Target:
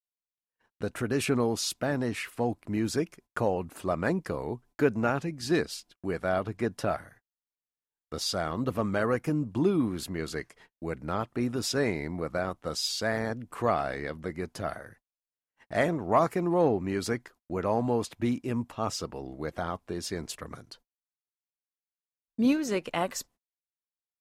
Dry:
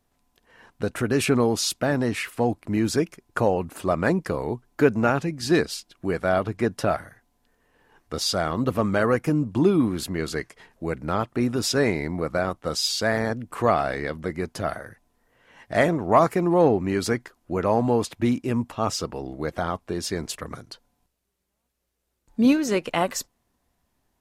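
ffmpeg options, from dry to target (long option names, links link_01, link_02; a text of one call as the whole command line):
ffmpeg -i in.wav -af "agate=range=-40dB:threshold=-48dB:ratio=16:detection=peak,volume=-6dB" out.wav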